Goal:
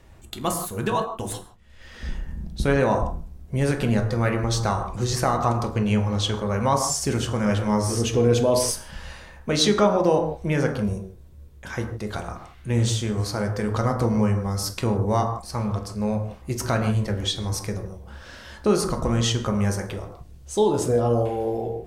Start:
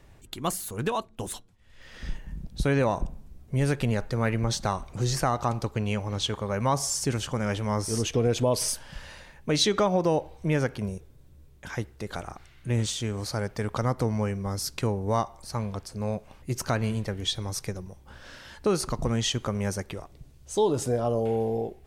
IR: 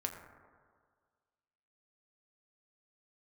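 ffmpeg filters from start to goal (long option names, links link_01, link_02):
-filter_complex "[1:a]atrim=start_sample=2205,atrim=end_sample=6174,asetrate=34839,aresample=44100[link_01];[0:a][link_01]afir=irnorm=-1:irlink=0,volume=2.5dB"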